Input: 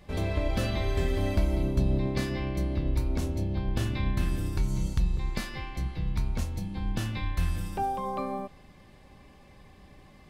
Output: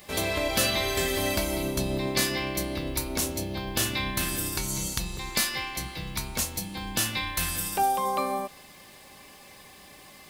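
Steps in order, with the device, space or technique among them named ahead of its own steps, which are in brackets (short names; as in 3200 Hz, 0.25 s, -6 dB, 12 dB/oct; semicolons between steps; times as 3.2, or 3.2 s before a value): turntable without a phono preamp (RIAA curve recording; white noise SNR 35 dB); gain +6.5 dB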